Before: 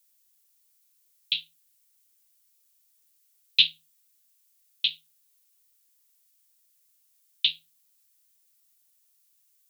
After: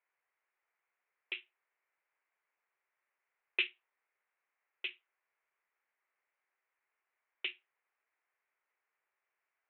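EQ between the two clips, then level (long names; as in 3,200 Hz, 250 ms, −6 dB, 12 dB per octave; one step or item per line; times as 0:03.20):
elliptic band-pass filter 370–2,200 Hz, stop band 40 dB
high-frequency loss of the air 450 metres
+9.5 dB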